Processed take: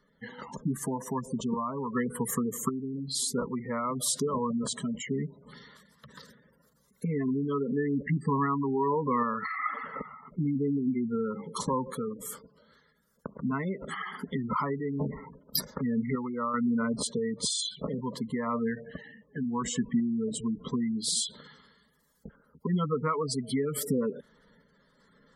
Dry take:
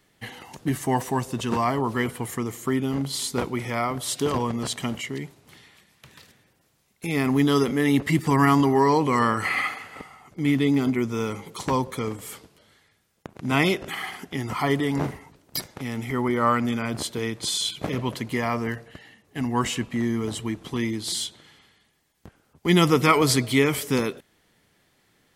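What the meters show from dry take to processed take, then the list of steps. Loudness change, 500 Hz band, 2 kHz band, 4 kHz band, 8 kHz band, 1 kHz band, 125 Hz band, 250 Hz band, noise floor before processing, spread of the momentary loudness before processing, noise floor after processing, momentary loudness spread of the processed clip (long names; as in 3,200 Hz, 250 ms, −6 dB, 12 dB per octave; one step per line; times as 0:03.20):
−6.5 dB, −6.5 dB, −12.0 dB, −7.0 dB, −2.0 dB, −7.5 dB, −7.5 dB, −5.5 dB, −66 dBFS, 13 LU, −67 dBFS, 10 LU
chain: downward compressor 6 to 1, threshold −28 dBFS, peak gain reduction 14.5 dB
gate on every frequency bin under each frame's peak −15 dB strong
phaser with its sweep stopped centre 500 Hz, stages 8
sample-and-hold tremolo 2.6 Hz
level +7.5 dB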